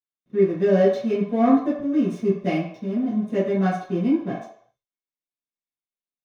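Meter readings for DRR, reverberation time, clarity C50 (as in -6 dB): -13.0 dB, 0.60 s, 4.0 dB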